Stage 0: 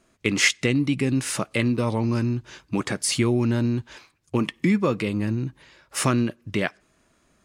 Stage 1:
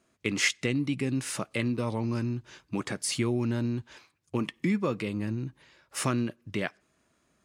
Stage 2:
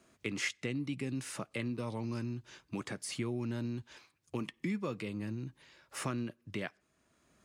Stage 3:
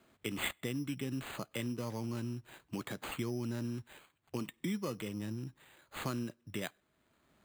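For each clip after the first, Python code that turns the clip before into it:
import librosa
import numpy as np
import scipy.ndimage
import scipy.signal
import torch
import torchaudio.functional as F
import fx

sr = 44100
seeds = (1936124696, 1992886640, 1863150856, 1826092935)

y1 = scipy.signal.sosfilt(scipy.signal.butter(2, 60.0, 'highpass', fs=sr, output='sos'), x)
y1 = y1 * librosa.db_to_amplitude(-6.5)
y2 = fx.band_squash(y1, sr, depth_pct=40)
y2 = y2 * librosa.db_to_amplitude(-8.0)
y3 = np.repeat(y2[::8], 8)[:len(y2)]
y3 = y3 * librosa.db_to_amplitude(-1.0)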